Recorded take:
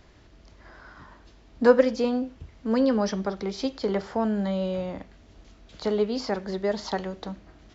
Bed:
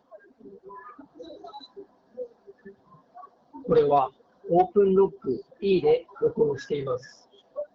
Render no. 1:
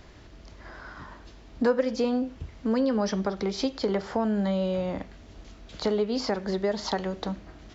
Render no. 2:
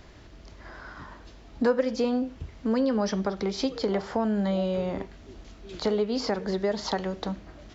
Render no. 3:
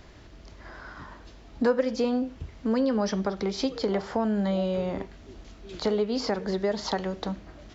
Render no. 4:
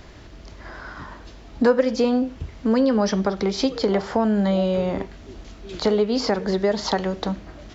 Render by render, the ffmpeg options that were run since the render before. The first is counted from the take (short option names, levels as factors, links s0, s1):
-filter_complex "[0:a]asplit=2[s0][s1];[s1]alimiter=limit=0.141:level=0:latency=1:release=139,volume=0.708[s2];[s0][s2]amix=inputs=2:normalize=0,acompressor=threshold=0.0501:ratio=2"
-filter_complex "[1:a]volume=0.0841[s0];[0:a][s0]amix=inputs=2:normalize=0"
-af anull
-af "volume=2"